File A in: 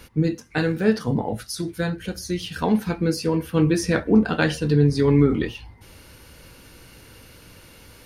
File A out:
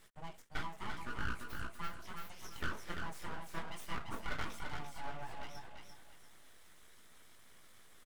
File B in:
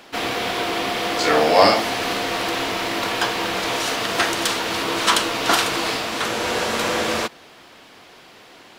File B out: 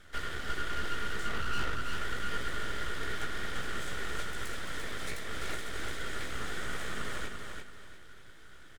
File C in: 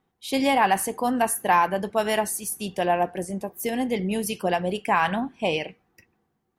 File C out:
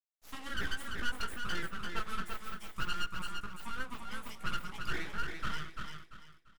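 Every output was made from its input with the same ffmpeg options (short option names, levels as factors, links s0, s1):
-filter_complex "[0:a]highpass=f=56:w=0.5412,highpass=f=56:w=1.3066,bass=f=250:g=-13,treble=f=4000:g=4,acrusher=bits=8:mix=0:aa=0.000001,acompressor=threshold=0.0562:ratio=5,asplit=3[s0][s1][s2];[s0]bandpass=f=730:t=q:w=8,volume=1[s3];[s1]bandpass=f=1090:t=q:w=8,volume=0.501[s4];[s2]bandpass=f=2440:t=q:w=8,volume=0.355[s5];[s3][s4][s5]amix=inputs=3:normalize=0,highshelf=f=6200:t=q:w=3:g=9,aeval=exprs='0.0376*(abs(mod(val(0)/0.0376+3,4)-2)-1)':c=same,flanger=delay=15.5:depth=3.8:speed=1.3,aeval=exprs='abs(val(0))':c=same,aecho=1:1:342|684|1026|1368:0.562|0.163|0.0473|0.0137,volume=2"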